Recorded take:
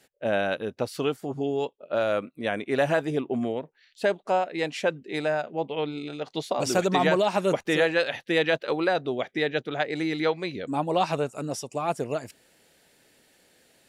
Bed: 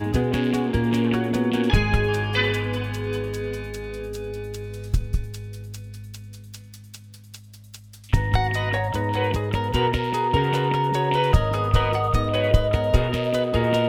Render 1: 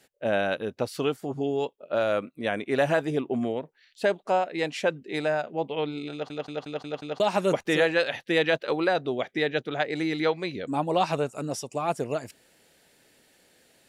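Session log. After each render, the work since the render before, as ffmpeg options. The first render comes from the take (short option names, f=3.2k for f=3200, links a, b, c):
-filter_complex "[0:a]asplit=7[a][b][c][d][e][f][g];[a]atrim=end=6.302[h];[b]atrim=start=6.118:end=6.302[i];[c]atrim=start=6.118:end=6.302[j];[d]atrim=start=6.118:end=6.302[k];[e]atrim=start=6.118:end=6.302[l];[f]atrim=start=6.118:end=6.302[m];[g]atrim=start=7.198[n];[h][i]acrossfade=d=0.004:c1=hsin:c2=hsin[o];[o][j]acrossfade=d=0.004:c1=hsin:c2=hsin[p];[p][k]acrossfade=d=0.004:c1=hsin:c2=hsin[q];[q][l]acrossfade=d=0.004:c1=hsin:c2=hsin[r];[r][m]acrossfade=d=0.004:c1=hsin:c2=hsin[s];[s][n]acrossfade=d=0.004:c1=hsin:c2=hsin"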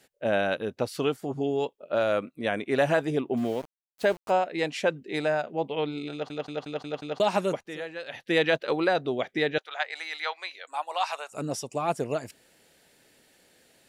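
-filter_complex "[0:a]asettb=1/sr,asplit=3[a][b][c];[a]atrim=end=3.374[d];[b]atrim=start=3.37:end=4.31,asetpts=PTS-STARTPTS,afade=t=in:d=0.004:c=qsin,afade=t=out:st=0.936:d=0.004:c=qsin,aeval=exprs='val(0)*gte(abs(val(0)),0.00944)':c=same[e];[c]atrim=start=4.306[f];[d][e]acrossfade=d=0.004:c1=hsin:c2=qsin[g];[g][f]acrossfade=d=0.004:c1=qsin:c2=hsin,asettb=1/sr,asplit=3[h][i][j];[h]atrim=end=9.584[k];[i]atrim=start=9.58:end=11.32,asetpts=PTS-STARTPTS,afade=t=in:d=0.004:c=qsin,afade=t=out:st=1.736:d=0.004:c=qsin,highpass=f=780:w=0.5412,highpass=f=780:w=1.3066[l];[j]atrim=start=11.316[m];[k][l]acrossfade=d=0.004:c1=hsin:c2=qsin[n];[n][m]acrossfade=d=0.004:c1=qsin:c2=hsin,asplit=3[o][p][q];[o]atrim=end=7.66,asetpts=PTS-STARTPTS,afade=t=out:st=7.36:d=0.3:silence=0.199526[r];[p]atrim=start=7.66:end=8.03,asetpts=PTS-STARTPTS,volume=-14dB[s];[q]atrim=start=8.03,asetpts=PTS-STARTPTS,afade=t=in:d=0.3:silence=0.199526[t];[r][s][t]concat=n=3:v=0:a=1"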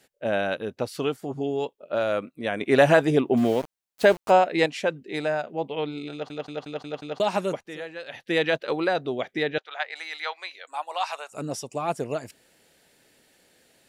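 -filter_complex "[0:a]asettb=1/sr,asplit=3[a][b][c];[a]atrim=end=9.434[d];[b]atrim=start=9.43:end=9.96,asetpts=PTS-STARTPTS,afade=t=in:d=0.004:c=qsin,afade=t=out:st=0.526:d=0.004:c=qsin,lowpass=5.3k[e];[c]atrim=start=9.956[f];[d][e]acrossfade=d=0.004:c1=hsin:c2=qsin[g];[g][f]acrossfade=d=0.004:c1=qsin:c2=hsin,asplit=3[h][i][j];[h]atrim=end=2.612[k];[i]atrim=start=2.608:end=4.662,asetpts=PTS-STARTPTS,volume=6.5dB[l];[j]atrim=start=4.658[m];[k][l]acrossfade=d=0.004:c1=hsin:c2=hsin[n];[n][m]acrossfade=d=0.004:c1=hsin:c2=hsin"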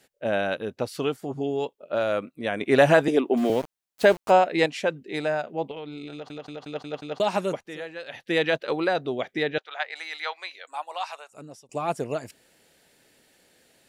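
-filter_complex "[0:a]asettb=1/sr,asplit=3[a][b][c];[a]atrim=end=3.084[d];[b]atrim=start=3.08:end=3.5,asetpts=PTS-STARTPTS,afade=t=in:d=0.004:c=qsin,afade=t=out:st=0.416:d=0.004:c=qsin,highpass=f=230:w=0.5412,highpass=f=230:w=1.3066[e];[c]atrim=start=3.496[f];[d][e]acrossfade=d=0.004:c1=hsin:c2=qsin[g];[g][f]acrossfade=d=0.004:c1=qsin:c2=hsin,asettb=1/sr,asplit=3[h][i][j];[h]atrim=end=5.714[k];[i]atrim=start=5.71:end=6.62,asetpts=PTS-STARTPTS,afade=t=in:d=0.004:c=qsin,afade=t=out:st=0.906:d=0.004:c=qsin,acompressor=threshold=-33dB:ratio=6:attack=3.2:release=140:knee=1:detection=peak[l];[j]atrim=start=6.616[m];[k][l]acrossfade=d=0.004:c1=hsin:c2=qsin[n];[n][m]acrossfade=d=0.004:c1=qsin:c2=hsin,asplit=2[o][p];[o]atrim=end=11.69,asetpts=PTS-STARTPTS,afade=t=out:st=10.6:d=1.09:silence=0.0749894[q];[p]atrim=start=11.69,asetpts=PTS-STARTPTS,afade=t=in:d=0.004:c=hsin:silence=0.0749894[r];[q][r]concat=n=2:v=0:a=1"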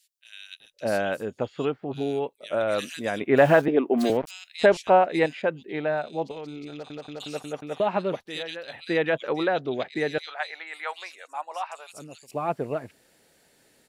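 -filter_complex "[0:a]acrossover=split=2900[a][b];[a]adelay=600[c];[c][b]amix=inputs=2:normalize=0"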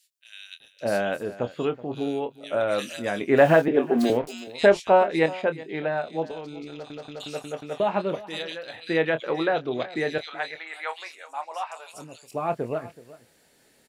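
-filter_complex "[0:a]asplit=2[a][b];[b]adelay=25,volume=-10dB[c];[a][c]amix=inputs=2:normalize=0,aecho=1:1:375:0.119"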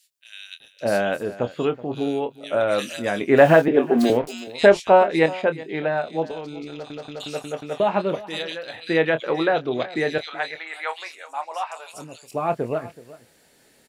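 -af "volume=3.5dB"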